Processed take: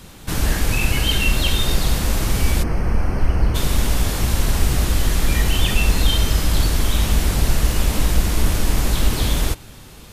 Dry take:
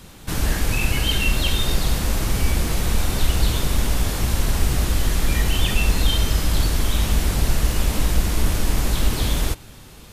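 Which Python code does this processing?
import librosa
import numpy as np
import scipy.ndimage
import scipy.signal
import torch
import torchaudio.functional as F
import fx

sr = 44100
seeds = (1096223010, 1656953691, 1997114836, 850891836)

y = fx.moving_average(x, sr, points=12, at=(2.62, 3.54), fade=0.02)
y = F.gain(torch.from_numpy(y), 2.0).numpy()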